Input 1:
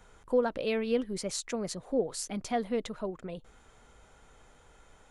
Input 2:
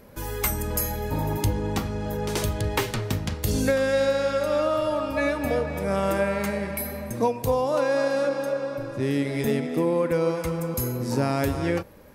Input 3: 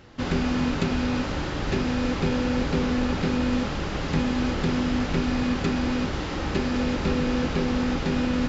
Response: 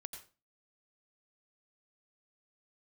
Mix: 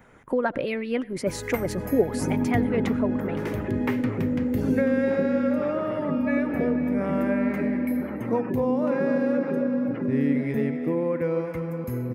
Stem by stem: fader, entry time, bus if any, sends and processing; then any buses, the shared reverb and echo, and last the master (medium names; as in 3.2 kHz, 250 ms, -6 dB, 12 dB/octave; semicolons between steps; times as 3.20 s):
0.0 dB, 0.00 s, send -11 dB, treble shelf 5.9 kHz +10 dB; harmonic-percussive split harmonic -12 dB
-13.0 dB, 1.10 s, no send, none
-13.5 dB, 1.95 s, no send, high-pass 180 Hz 24 dB/octave; spectral gate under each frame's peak -15 dB strong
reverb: on, RT60 0.35 s, pre-delay 82 ms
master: graphic EQ 125/250/500/1000/2000/4000/8000 Hz +10/+11/+7/+3/+12/-6/-9 dB